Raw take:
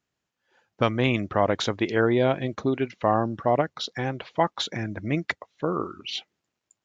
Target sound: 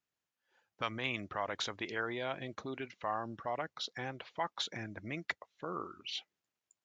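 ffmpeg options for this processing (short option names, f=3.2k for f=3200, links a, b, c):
-filter_complex "[0:a]lowshelf=f=480:g=-6.5,acrossover=split=810[a][b];[a]alimiter=level_in=2dB:limit=-24dB:level=0:latency=1,volume=-2dB[c];[c][b]amix=inputs=2:normalize=0,volume=-8dB"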